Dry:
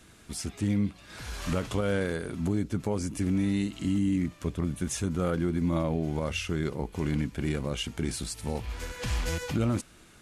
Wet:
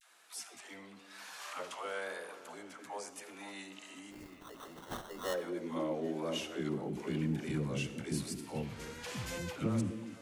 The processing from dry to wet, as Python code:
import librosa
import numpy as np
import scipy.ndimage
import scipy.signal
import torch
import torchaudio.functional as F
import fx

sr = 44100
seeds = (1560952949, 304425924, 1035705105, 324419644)

y = fx.filter_sweep_highpass(x, sr, from_hz=790.0, to_hz=140.0, start_s=4.48, end_s=7.41, q=1.4)
y = fx.dispersion(y, sr, late='lows', ms=127.0, hz=440.0)
y = fx.vibrato(y, sr, rate_hz=0.99, depth_cents=83.0)
y = fx.sample_hold(y, sr, seeds[0], rate_hz=2400.0, jitter_pct=0, at=(4.1, 5.33), fade=0.02)
y = fx.echo_stepped(y, sr, ms=258, hz=330.0, octaves=1.4, feedback_pct=70, wet_db=-8)
y = fx.rev_freeverb(y, sr, rt60_s=0.94, hf_ratio=0.8, predelay_ms=30, drr_db=12.5)
y = F.gain(torch.from_numpy(y), -7.0).numpy()